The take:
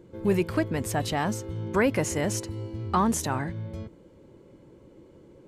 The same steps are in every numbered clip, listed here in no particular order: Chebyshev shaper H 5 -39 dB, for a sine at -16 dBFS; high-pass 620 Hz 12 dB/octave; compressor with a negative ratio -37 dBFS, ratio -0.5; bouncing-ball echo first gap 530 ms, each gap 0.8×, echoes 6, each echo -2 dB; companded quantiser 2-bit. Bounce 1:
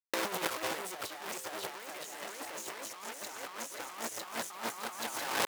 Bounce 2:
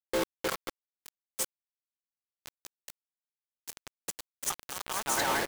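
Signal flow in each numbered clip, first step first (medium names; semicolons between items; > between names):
bouncing-ball echo > companded quantiser > Chebyshev shaper > high-pass > compressor with a negative ratio; Chebyshev shaper > bouncing-ball echo > compressor with a negative ratio > high-pass > companded quantiser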